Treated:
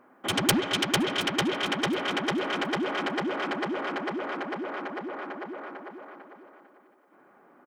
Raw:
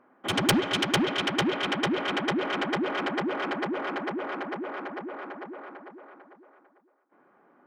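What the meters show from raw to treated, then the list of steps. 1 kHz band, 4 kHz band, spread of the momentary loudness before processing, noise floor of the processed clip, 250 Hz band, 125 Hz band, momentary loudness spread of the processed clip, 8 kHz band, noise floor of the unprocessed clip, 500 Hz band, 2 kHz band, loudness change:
−0.5 dB, +0.5 dB, 15 LU, −59 dBFS, −1.0 dB, −1.0 dB, 15 LU, +3.5 dB, −64 dBFS, −0.5 dB, 0.0 dB, −0.5 dB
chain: high-shelf EQ 5,900 Hz +7.5 dB
in parallel at −0.5 dB: downward compressor, threshold −39 dBFS, peak gain reduction 21.5 dB
on the sum: repeating echo 720 ms, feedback 29%, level −18 dB
level −2.5 dB

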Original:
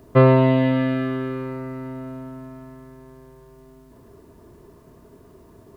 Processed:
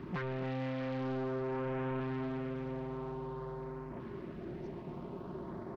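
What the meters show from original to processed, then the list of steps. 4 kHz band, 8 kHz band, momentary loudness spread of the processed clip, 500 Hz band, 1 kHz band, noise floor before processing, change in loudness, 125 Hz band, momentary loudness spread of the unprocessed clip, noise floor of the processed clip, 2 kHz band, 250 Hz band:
−14.0 dB, can't be measured, 8 LU, −14.5 dB, −13.5 dB, −50 dBFS, −19.0 dB, −17.0 dB, 22 LU, −46 dBFS, −12.5 dB, −15.0 dB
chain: high-pass filter 150 Hz 6 dB per octave
noise reduction from a noise print of the clip's start 24 dB
parametric band 440 Hz −7.5 dB 0.41 octaves
comb filter 5.5 ms, depth 47%
downward compressor 10 to 1, threshold −59 dBFS, peak gain reduction 27 dB
leveller curve on the samples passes 5
auto-filter notch saw up 0.5 Hz 630–3,900 Hz
high-frequency loss of the air 360 metres
single-tap delay 279 ms −13 dB
highs frequency-modulated by the lows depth 0.56 ms
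level +15 dB

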